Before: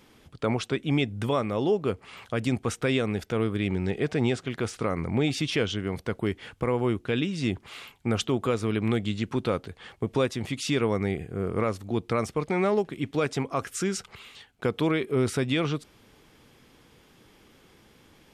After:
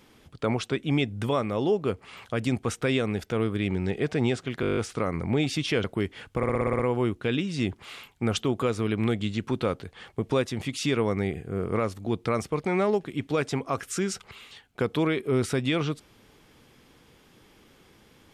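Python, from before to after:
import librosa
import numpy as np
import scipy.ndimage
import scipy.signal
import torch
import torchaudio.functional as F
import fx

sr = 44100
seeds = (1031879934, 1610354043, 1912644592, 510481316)

y = fx.edit(x, sr, fx.stutter(start_s=4.61, slice_s=0.02, count=9),
    fx.cut(start_s=5.68, length_s=0.42),
    fx.stutter(start_s=6.63, slice_s=0.06, count=8), tone=tone)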